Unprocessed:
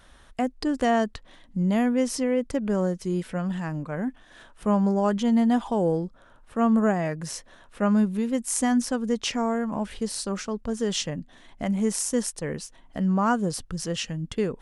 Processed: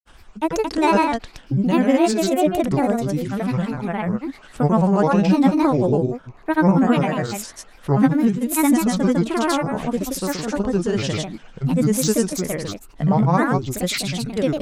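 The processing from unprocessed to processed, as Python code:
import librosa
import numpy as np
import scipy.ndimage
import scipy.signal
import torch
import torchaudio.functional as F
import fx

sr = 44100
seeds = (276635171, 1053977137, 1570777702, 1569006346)

y = x + 10.0 ** (-5.0 / 20.0) * np.pad(x, (int(159 * sr / 1000.0), 0))[:len(x)]
y = fx.granulator(y, sr, seeds[0], grain_ms=100.0, per_s=20.0, spray_ms=100.0, spread_st=7)
y = y * librosa.db_to_amplitude(6.0)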